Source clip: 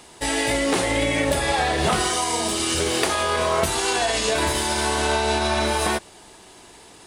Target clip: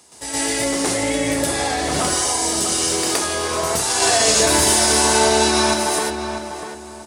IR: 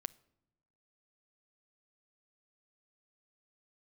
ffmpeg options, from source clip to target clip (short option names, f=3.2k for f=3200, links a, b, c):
-filter_complex "[0:a]highpass=66,highshelf=f=4.3k:t=q:w=1.5:g=6.5,asettb=1/sr,asplit=3[a][b][c];[a]atrim=end=3.904[d];[b]atrim=start=3.9:end=5.62,asetpts=PTS-STARTPTS,afade=t=in:d=0.004:c=qsin,afade=t=out:st=1.716:d=0.004:c=qsin,acontrast=45[e];[c]atrim=start=5.616[f];[d][e]acrossfade=d=0.004:c1=hsin:c2=qsin[g];[g][f]acrossfade=d=0.004:c1=qsin:c2=hsin,asplit=2[h][i];[i]adelay=646,lowpass=f=2k:p=1,volume=-7dB,asplit=2[j][k];[k]adelay=646,lowpass=f=2k:p=1,volume=0.3,asplit=2[l][m];[m]adelay=646,lowpass=f=2k:p=1,volume=0.3,asplit=2[n][o];[o]adelay=646,lowpass=f=2k:p=1,volume=0.3[p];[h][j][l][n][p]amix=inputs=5:normalize=0,asplit=2[q][r];[1:a]atrim=start_sample=2205,adelay=119[s];[r][s]afir=irnorm=-1:irlink=0,volume=9dB[t];[q][t]amix=inputs=2:normalize=0,volume=-8dB"